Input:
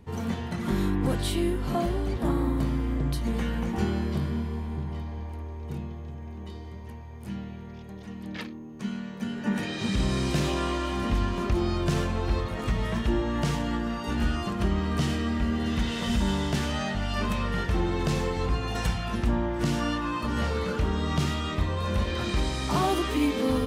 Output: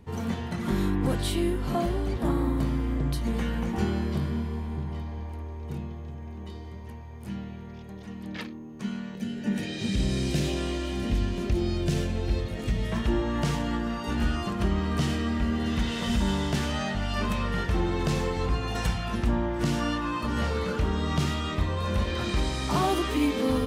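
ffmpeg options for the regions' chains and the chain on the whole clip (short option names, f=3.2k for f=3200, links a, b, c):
-filter_complex "[0:a]asettb=1/sr,asplit=3[a][b][c];[a]atrim=end=9.154[d];[b]atrim=start=9.15:end=12.92,asetpts=PTS-STARTPTS,afade=t=in:d=0.004:c=qsin,afade=t=out:st=3.766:d=0.004:c=qsin,equalizer=f=1.1k:t=o:w=0.94:g=-13,acompressor=mode=upward:threshold=-34dB:ratio=2.5:attack=3.2:release=140:knee=2.83:detection=peak[e];[c]atrim=start=12.916[f];[d][e]acrossfade=d=0.004:c1=hsin:c2=qsin[g];[g][f]acrossfade=d=0.004:c1=qsin:c2=hsin"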